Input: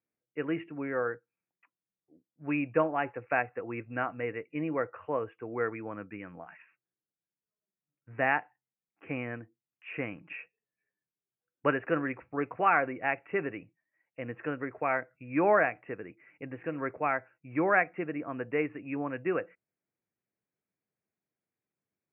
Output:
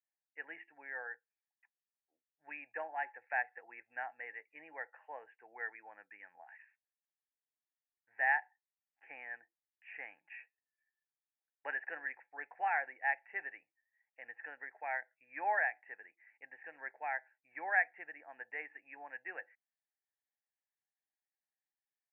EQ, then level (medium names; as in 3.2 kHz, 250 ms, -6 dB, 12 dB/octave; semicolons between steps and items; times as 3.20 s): two resonant band-passes 1.2 kHz, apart 1.1 oct; distance through air 290 m; tilt EQ +4.5 dB/octave; 0.0 dB